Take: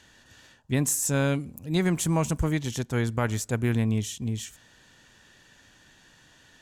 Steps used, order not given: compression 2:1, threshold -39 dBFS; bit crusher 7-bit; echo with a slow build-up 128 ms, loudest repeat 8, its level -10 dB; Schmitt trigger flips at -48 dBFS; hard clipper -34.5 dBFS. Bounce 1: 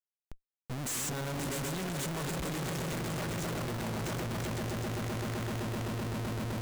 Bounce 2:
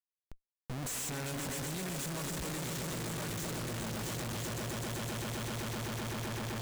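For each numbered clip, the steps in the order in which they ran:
echo with a slow build-up > compression > bit crusher > Schmitt trigger > hard clipper; compression > bit crusher > echo with a slow build-up > hard clipper > Schmitt trigger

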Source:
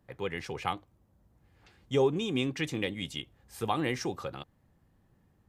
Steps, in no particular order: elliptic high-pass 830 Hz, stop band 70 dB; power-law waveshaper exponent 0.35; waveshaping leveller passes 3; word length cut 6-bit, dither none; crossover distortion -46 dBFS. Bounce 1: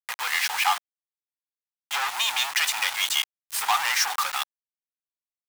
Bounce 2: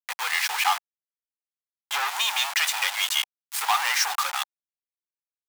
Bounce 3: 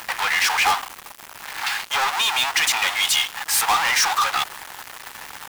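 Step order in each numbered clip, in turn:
waveshaping leveller > word length cut > power-law waveshaper > elliptic high-pass > crossover distortion; waveshaping leveller > crossover distortion > word length cut > power-law waveshaper > elliptic high-pass; power-law waveshaper > crossover distortion > elliptic high-pass > waveshaping leveller > word length cut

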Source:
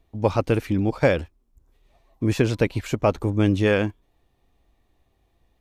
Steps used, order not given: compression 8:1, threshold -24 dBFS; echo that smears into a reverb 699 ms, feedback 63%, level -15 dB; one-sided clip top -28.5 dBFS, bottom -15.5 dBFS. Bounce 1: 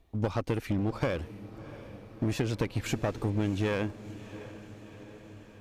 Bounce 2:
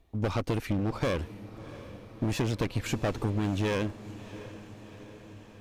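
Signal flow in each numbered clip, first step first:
compression > one-sided clip > echo that smears into a reverb; one-sided clip > compression > echo that smears into a reverb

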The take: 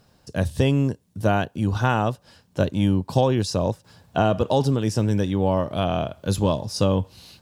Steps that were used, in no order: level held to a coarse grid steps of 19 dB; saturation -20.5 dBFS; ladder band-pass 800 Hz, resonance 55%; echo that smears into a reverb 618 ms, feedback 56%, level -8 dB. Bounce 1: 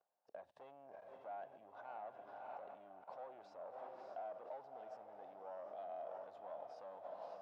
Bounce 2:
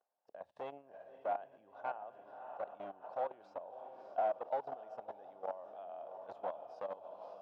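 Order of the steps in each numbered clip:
saturation > echo that smears into a reverb > level held to a coarse grid > ladder band-pass; echo that smears into a reverb > level held to a coarse grid > saturation > ladder band-pass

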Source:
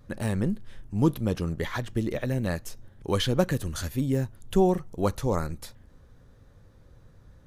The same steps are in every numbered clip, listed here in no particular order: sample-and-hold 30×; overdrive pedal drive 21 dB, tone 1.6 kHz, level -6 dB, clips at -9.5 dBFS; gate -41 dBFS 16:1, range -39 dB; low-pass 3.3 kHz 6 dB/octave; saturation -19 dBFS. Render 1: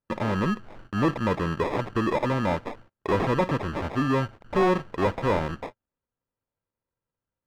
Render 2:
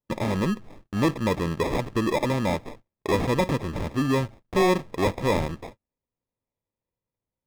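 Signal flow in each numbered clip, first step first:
saturation > gate > sample-and-hold > overdrive pedal > low-pass; saturation > overdrive pedal > sample-and-hold > low-pass > gate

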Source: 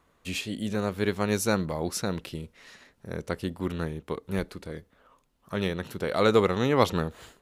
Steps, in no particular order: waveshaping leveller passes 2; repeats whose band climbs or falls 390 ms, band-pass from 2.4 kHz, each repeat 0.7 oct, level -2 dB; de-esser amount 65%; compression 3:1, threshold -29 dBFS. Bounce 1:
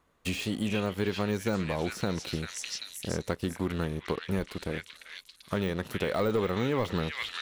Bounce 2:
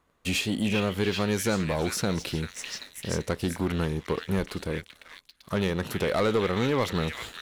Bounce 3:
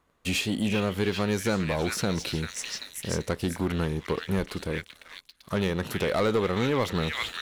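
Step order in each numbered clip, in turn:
waveshaping leveller > repeats whose band climbs or falls > de-esser > compression; compression > repeats whose band climbs or falls > de-esser > waveshaping leveller; repeats whose band climbs or falls > de-esser > compression > waveshaping leveller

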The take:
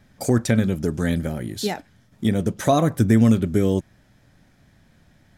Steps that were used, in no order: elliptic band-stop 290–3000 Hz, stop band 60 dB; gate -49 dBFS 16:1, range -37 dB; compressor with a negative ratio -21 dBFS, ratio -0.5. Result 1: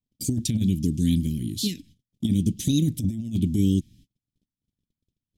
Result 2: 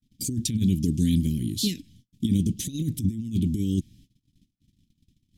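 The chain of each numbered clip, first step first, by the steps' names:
elliptic band-stop > compressor with a negative ratio > gate; compressor with a negative ratio > gate > elliptic band-stop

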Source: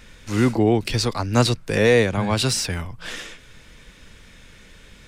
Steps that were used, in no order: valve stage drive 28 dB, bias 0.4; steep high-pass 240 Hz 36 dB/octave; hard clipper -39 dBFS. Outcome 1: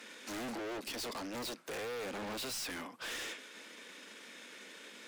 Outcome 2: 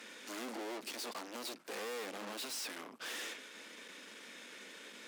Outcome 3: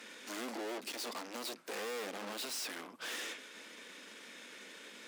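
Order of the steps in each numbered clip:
valve stage > steep high-pass > hard clipper; hard clipper > valve stage > steep high-pass; valve stage > hard clipper > steep high-pass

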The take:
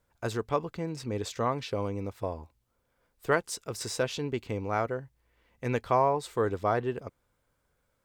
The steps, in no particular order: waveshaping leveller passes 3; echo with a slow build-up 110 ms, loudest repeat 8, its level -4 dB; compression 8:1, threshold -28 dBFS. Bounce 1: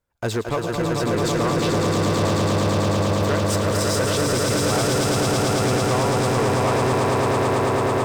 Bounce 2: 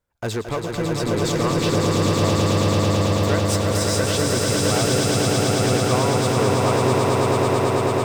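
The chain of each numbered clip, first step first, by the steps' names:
compression > echo with a slow build-up > waveshaping leveller; compression > waveshaping leveller > echo with a slow build-up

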